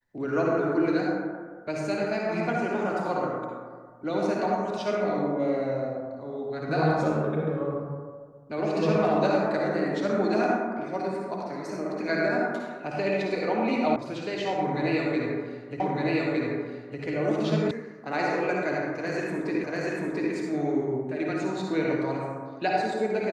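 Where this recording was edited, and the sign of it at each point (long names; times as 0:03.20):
0:13.96: cut off before it has died away
0:15.80: the same again, the last 1.21 s
0:17.71: cut off before it has died away
0:19.64: the same again, the last 0.69 s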